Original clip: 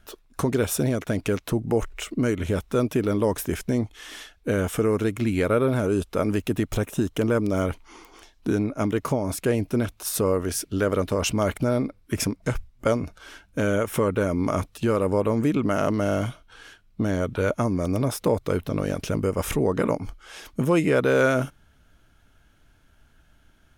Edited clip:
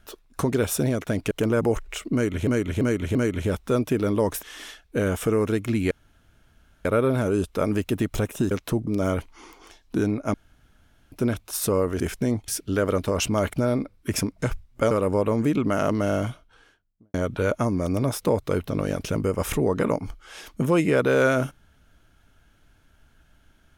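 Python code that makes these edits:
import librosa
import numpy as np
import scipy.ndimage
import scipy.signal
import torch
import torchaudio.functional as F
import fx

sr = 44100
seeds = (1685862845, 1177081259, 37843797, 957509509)

y = fx.studio_fade_out(x, sr, start_s=16.07, length_s=1.06)
y = fx.edit(y, sr, fx.swap(start_s=1.31, length_s=0.36, other_s=7.09, other_length_s=0.3),
    fx.repeat(start_s=2.19, length_s=0.34, count=4),
    fx.move(start_s=3.47, length_s=0.48, to_s=10.52),
    fx.insert_room_tone(at_s=5.43, length_s=0.94),
    fx.room_tone_fill(start_s=8.86, length_s=0.78),
    fx.cut(start_s=12.95, length_s=1.95), tone=tone)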